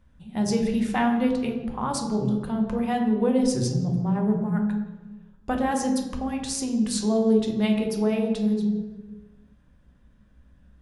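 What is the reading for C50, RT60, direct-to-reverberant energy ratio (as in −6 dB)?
5.5 dB, 1.2 s, 1.5 dB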